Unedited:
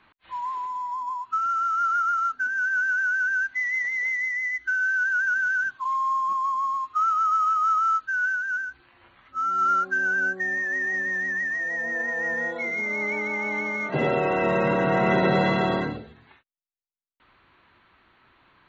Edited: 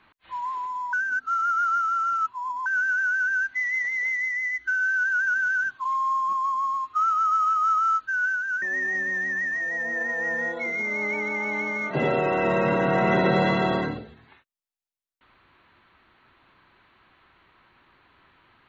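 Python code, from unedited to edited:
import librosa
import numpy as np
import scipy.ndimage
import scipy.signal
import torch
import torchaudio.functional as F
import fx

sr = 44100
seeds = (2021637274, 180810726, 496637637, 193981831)

y = fx.edit(x, sr, fx.reverse_span(start_s=0.93, length_s=1.73),
    fx.cut(start_s=8.62, length_s=1.99), tone=tone)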